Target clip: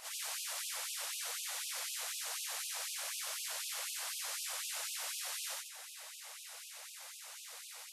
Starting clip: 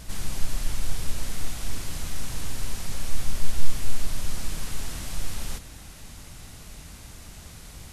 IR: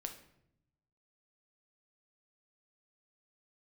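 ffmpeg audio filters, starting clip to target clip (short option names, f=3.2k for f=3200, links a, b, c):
-af "afftfilt=real='re':imag='-im':win_size=8192:overlap=0.75,afftfilt=real='re*gte(b*sr/1024,450*pow(2500/450,0.5+0.5*sin(2*PI*4*pts/sr)))':imag='im*gte(b*sr/1024,450*pow(2500/450,0.5+0.5*sin(2*PI*4*pts/sr)))':win_size=1024:overlap=0.75,volume=3.5dB"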